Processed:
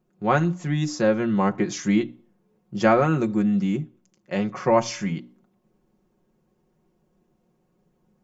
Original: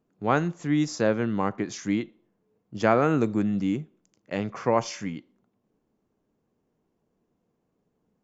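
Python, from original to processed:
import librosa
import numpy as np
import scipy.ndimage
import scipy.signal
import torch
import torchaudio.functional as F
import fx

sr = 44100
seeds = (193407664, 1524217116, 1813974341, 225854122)

y = fx.low_shelf(x, sr, hz=120.0, db=6.5)
y = fx.rider(y, sr, range_db=3, speed_s=0.5)
y = fx.hum_notches(y, sr, base_hz=60, count=5)
y = y + 0.71 * np.pad(y, (int(5.5 * sr / 1000.0), 0))[:len(y)]
y = y * 10.0 ** (1.0 / 20.0)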